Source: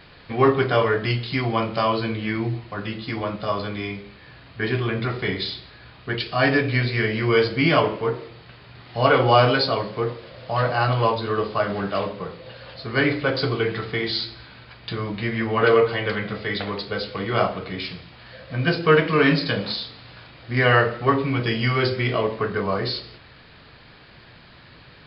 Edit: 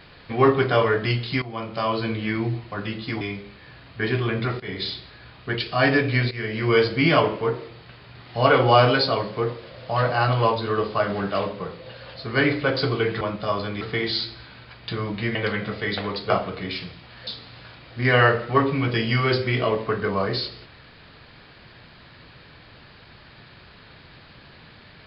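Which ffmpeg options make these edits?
-filter_complex "[0:a]asplit=10[s0][s1][s2][s3][s4][s5][s6][s7][s8][s9];[s0]atrim=end=1.42,asetpts=PTS-STARTPTS,afade=t=out:st=1.416:d=0.004:c=hsin:silence=0.177828[s10];[s1]atrim=start=1.42:end=3.212,asetpts=PTS-STARTPTS,afade=t=in:d=0.69:silence=0.177828[s11];[s2]atrim=start=3.808:end=5.2,asetpts=PTS-STARTPTS,afade=t=out:st=1.388:d=0.004:c=hsin:silence=0.141254[s12];[s3]atrim=start=5.2:end=6.91,asetpts=PTS-STARTPTS,afade=t=in:d=0.27:silence=0.141254,afade=t=out:st=1.706:d=0.004:c=hsin:silence=0.223872[s13];[s4]atrim=start=6.91:end=13.812,asetpts=PTS-STARTPTS,afade=t=in:d=0.4:silence=0.223872[s14];[s5]atrim=start=3.208:end=3.812[s15];[s6]atrim=start=13.808:end=15.352[s16];[s7]atrim=start=15.978:end=16.932[s17];[s8]atrim=start=17.388:end=18.362[s18];[s9]atrim=start=19.788[s19];[s10][s11]concat=n=2:v=0:a=1[s20];[s12][s13][s14]concat=n=3:v=0:a=1[s21];[s20][s21]acrossfade=d=0.004:c1=hsin:c2=hsin[s22];[s22][s15]acrossfade=d=0.004:c1=hsin:c2=hsin[s23];[s23][s16]acrossfade=d=0.004:c1=hsin:c2=hsin[s24];[s24][s17]acrossfade=d=0.004:c1=hsin:c2=hsin[s25];[s25][s18]acrossfade=d=0.004:c1=hsin:c2=hsin[s26];[s26][s19]acrossfade=d=0.004:c1=hsin:c2=hsin"

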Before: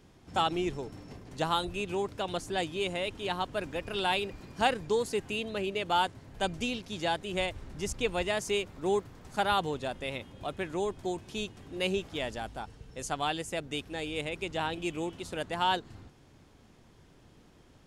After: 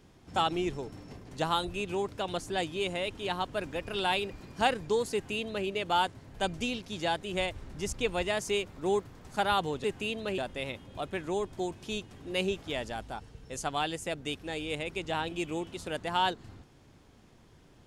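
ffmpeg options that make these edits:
-filter_complex "[0:a]asplit=3[s0][s1][s2];[s0]atrim=end=9.842[s3];[s1]atrim=start=5.128:end=5.672[s4];[s2]atrim=start=9.838[s5];[s3][s4]acrossfade=d=0.004:c1=hsin:c2=hsin[s6];[s6][s5]acrossfade=d=0.004:c1=hsin:c2=hsin"

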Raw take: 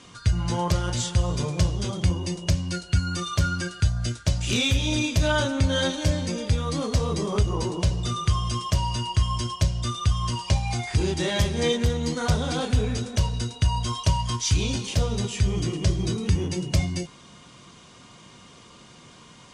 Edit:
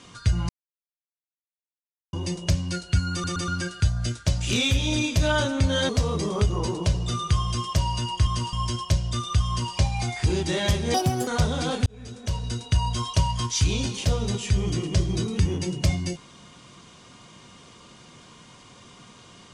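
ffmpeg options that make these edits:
-filter_complex "[0:a]asplit=12[s0][s1][s2][s3][s4][s5][s6][s7][s8][s9][s10][s11];[s0]atrim=end=0.49,asetpts=PTS-STARTPTS,afade=t=out:st=0.486:d=0.004:c=hsin[s12];[s1]atrim=start=0.49:end=2.13,asetpts=PTS-STARTPTS,volume=0[s13];[s2]atrim=start=2.13:end=3.242,asetpts=PTS-STARTPTS,afade=t=in:d=0.004:c=hsin[s14];[s3]atrim=start=3.118:end=3.242[s15];[s4]atrim=start=3.118:end=3.242[s16];[s5]atrim=start=3.478:end=5.892[s17];[s6]atrim=start=6.858:end=9.242[s18];[s7]atrim=start=10.188:end=10.452[s19];[s8]atrim=start=9.238:end=11.654[s20];[s9]atrim=start=11.65:end=12.17,asetpts=PTS-STARTPTS,asetrate=69237,aresample=44100,atrim=end_sample=14606,asetpts=PTS-STARTPTS[s21];[s10]atrim=start=12.166:end=12.76,asetpts=PTS-STARTPTS,afade=t=out:st=0.59:d=0.004:c=hsin[s22];[s11]atrim=start=12.76,asetpts=PTS-STARTPTS,afade=t=in:d=0.79[s23];[s12][s13][s14]concat=n=3:v=0:a=1[s24];[s24][s15]acrossfade=d=0.004:c1=hsin:c2=hsin[s25];[s25][s16]acrossfade=d=0.004:c1=hsin:c2=hsin[s26];[s26][s17]acrossfade=d=0.004:c1=hsin:c2=hsin[s27];[s27][s18]acrossfade=d=0.004:c1=hsin:c2=hsin[s28];[s28][s19]acrossfade=d=0.004:c1=hsin:c2=hsin[s29];[s29][s20]acrossfade=d=0.004:c1=hsin:c2=hsin[s30];[s30][s21]acrossfade=d=0.004:c1=hsin:c2=hsin[s31];[s22][s23]concat=n=2:v=0:a=1[s32];[s31][s32]acrossfade=d=0.004:c1=hsin:c2=hsin"

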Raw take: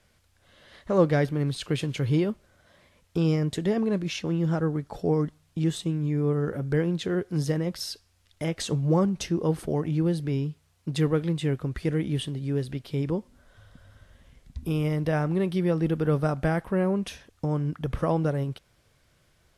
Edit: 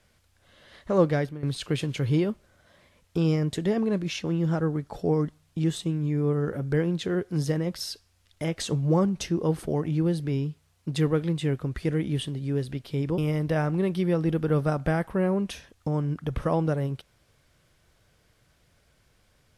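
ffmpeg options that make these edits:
-filter_complex "[0:a]asplit=3[s0][s1][s2];[s0]atrim=end=1.43,asetpts=PTS-STARTPTS,afade=t=out:st=0.92:d=0.51:c=qsin:silence=0.149624[s3];[s1]atrim=start=1.43:end=13.182,asetpts=PTS-STARTPTS,afade=t=in:d=0.004:c=hsin:silence=0.149624[s4];[s2]atrim=start=14.748[s5];[s3][s4]concat=n=2:v=0:a=1[s6];[s6][s5]acrossfade=d=0.004:c1=hsin:c2=hsin"

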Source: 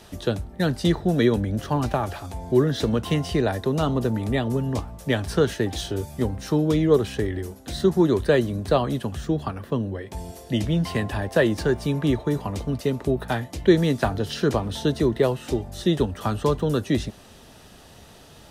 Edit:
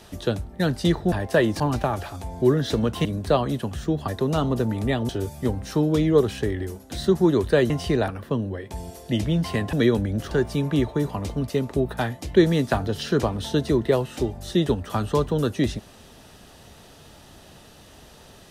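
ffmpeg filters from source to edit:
-filter_complex "[0:a]asplit=10[s0][s1][s2][s3][s4][s5][s6][s7][s8][s9];[s0]atrim=end=1.122[s10];[s1]atrim=start=11.138:end=11.622[s11];[s2]atrim=start=1.698:end=3.152[s12];[s3]atrim=start=8.458:end=9.492[s13];[s4]atrim=start=3.528:end=4.542[s14];[s5]atrim=start=5.848:end=8.462[s15];[s6]atrim=start=3.148:end=3.532[s16];[s7]atrim=start=9.488:end=11.142[s17];[s8]atrim=start=1.118:end=1.702[s18];[s9]atrim=start=11.618[s19];[s10][s11]acrossfade=d=0.004:c1=hsin:c2=hsin[s20];[s20][s12]acrossfade=d=0.004:c1=hsin:c2=hsin[s21];[s21][s13]acrossfade=d=0.004:c1=hsin:c2=hsin[s22];[s22][s14]acrossfade=d=0.004:c1=hsin:c2=hsin[s23];[s23][s15]acrossfade=d=0.004:c1=hsin:c2=hsin[s24];[s24][s16]acrossfade=d=0.004:c1=hsin:c2=hsin[s25];[s25][s17]acrossfade=d=0.004:c1=hsin:c2=hsin[s26];[s26][s18]acrossfade=d=0.004:c1=hsin:c2=hsin[s27];[s27][s19]acrossfade=d=0.004:c1=hsin:c2=hsin"

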